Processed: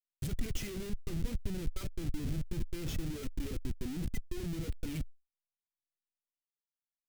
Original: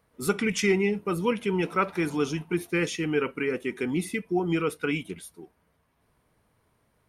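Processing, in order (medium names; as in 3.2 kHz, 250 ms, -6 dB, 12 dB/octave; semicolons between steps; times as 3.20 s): coarse spectral quantiser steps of 15 dB; spectral noise reduction 15 dB; Chebyshev shaper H 3 -21 dB, 4 -40 dB, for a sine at -13 dBFS; Schmitt trigger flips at -37 dBFS; amplifier tone stack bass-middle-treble 10-0-1; trim +13.5 dB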